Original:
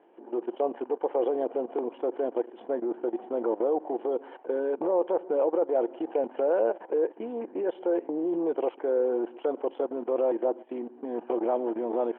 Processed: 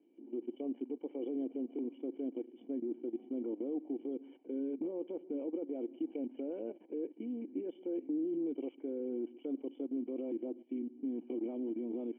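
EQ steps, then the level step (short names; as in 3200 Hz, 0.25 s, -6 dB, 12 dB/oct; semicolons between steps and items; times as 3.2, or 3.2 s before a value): vocal tract filter i; +2.0 dB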